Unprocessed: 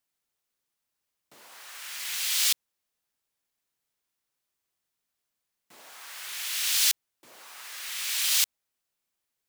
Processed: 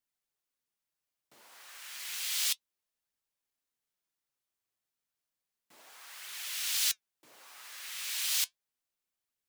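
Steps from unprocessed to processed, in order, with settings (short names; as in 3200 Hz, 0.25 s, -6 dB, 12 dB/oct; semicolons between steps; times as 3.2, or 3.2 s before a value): flange 0.32 Hz, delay 0.3 ms, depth 9.6 ms, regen +73%; gain -2 dB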